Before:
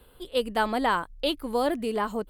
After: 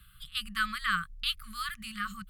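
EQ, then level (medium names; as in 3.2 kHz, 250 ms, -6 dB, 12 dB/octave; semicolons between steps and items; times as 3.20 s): brick-wall FIR band-stop 200–1100 Hz; peaking EQ 430 Hz +3 dB 2.7 oct; 0.0 dB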